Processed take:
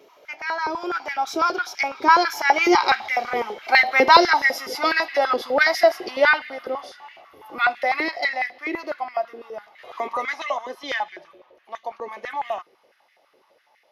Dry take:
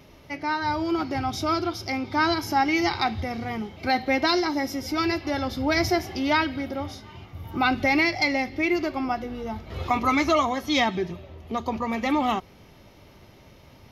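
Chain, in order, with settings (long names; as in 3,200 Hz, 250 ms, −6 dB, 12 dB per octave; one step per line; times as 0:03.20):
source passing by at 0:03.87, 18 m/s, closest 26 metres
high-pass on a step sequencer 12 Hz 420–1,900 Hz
level +5.5 dB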